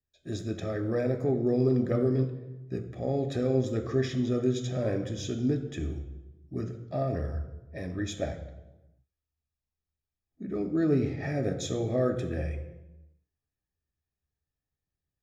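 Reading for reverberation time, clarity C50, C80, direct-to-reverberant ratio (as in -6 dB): 1.1 s, 9.5 dB, 11.5 dB, 5.0 dB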